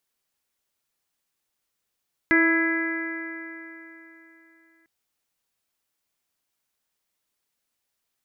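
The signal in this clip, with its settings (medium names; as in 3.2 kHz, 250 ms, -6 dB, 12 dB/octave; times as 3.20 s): stretched partials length 2.55 s, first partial 326 Hz, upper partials -13.5/-15/-12/-1/-1.5/-16.5 dB, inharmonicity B 0.0016, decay 3.36 s, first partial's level -18.5 dB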